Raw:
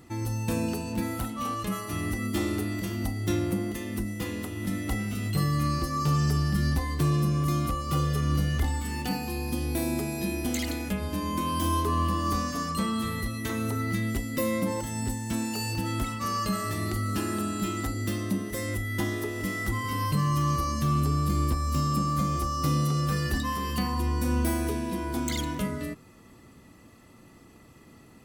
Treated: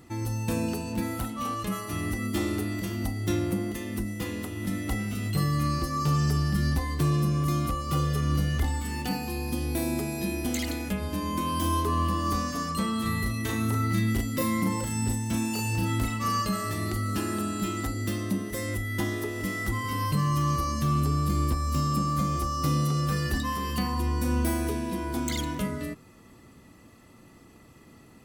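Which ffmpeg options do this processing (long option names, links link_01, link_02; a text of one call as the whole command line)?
ffmpeg -i in.wav -filter_complex "[0:a]asettb=1/sr,asplit=3[link_01][link_02][link_03];[link_01]atrim=end=13.024[link_04];[link_02]atrim=start=13.02:end=16.42,asetpts=PTS-STARTPTS,afade=type=in:duration=0.004:curve=qsin,afade=type=out:start_time=3.396:duration=0.004:curve=qsin,asplit=2[link_05][link_06];[link_06]adelay=37,volume=-3dB[link_07];[link_05][link_07]amix=inputs=2:normalize=0,atrim=end_sample=149940[link_08];[link_03]atrim=start=16.416[link_09];[link_04][link_08]acrossfade=duration=0.004:curve1=hsin:curve2=qsin[link_10];[link_10][link_09]acrossfade=duration=0.004:curve1=qsin:curve2=hsin" out.wav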